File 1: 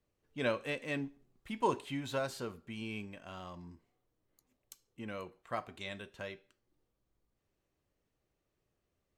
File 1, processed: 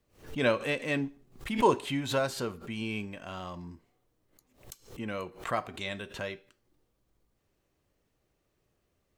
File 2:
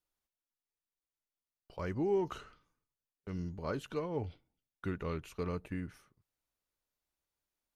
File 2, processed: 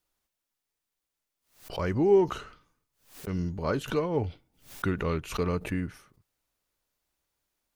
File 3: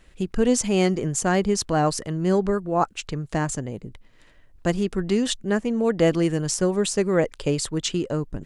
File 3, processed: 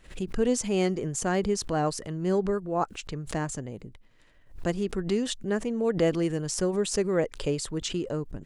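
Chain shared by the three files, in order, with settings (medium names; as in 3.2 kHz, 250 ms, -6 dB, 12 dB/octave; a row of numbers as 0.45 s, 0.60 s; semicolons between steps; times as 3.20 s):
dynamic bell 430 Hz, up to +3 dB, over -33 dBFS, Q 2.4; swell ahead of each attack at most 140 dB/s; peak normalisation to -12 dBFS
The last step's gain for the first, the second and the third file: +6.5 dB, +8.5 dB, -6.5 dB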